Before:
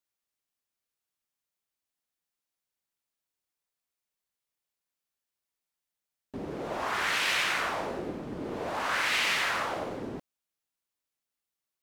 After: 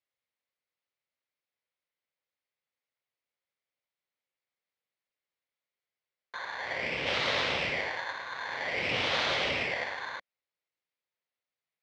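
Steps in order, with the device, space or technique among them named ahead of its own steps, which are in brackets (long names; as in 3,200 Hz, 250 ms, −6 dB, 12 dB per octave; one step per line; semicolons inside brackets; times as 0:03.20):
0:06.35–0:07.07: high-shelf EQ 2,400 Hz −10 dB
ring modulator pedal into a guitar cabinet (ring modulator with a square carrier 1,300 Hz; loudspeaker in its box 86–4,600 Hz, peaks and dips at 200 Hz −5 dB, 310 Hz −4 dB, 530 Hz +7 dB, 2,100 Hz +7 dB)
level −2 dB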